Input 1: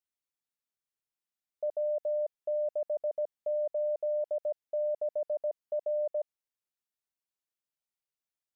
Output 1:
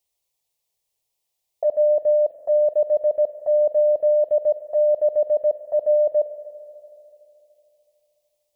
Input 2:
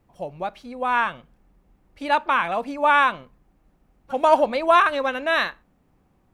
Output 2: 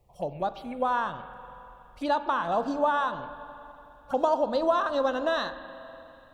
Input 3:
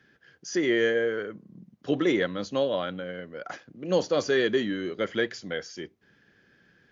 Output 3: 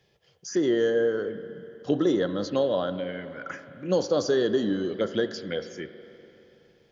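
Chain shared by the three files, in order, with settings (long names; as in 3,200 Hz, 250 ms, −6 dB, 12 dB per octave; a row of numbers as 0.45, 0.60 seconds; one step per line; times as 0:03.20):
downward compressor, threshold −21 dBFS
phaser swept by the level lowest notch 250 Hz, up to 2,300 Hz, full sweep at −27 dBFS
spring reverb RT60 3.1 s, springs 41/47 ms, chirp 40 ms, DRR 11 dB
normalise the peak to −12 dBFS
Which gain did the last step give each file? +15.5, +1.5, +3.5 decibels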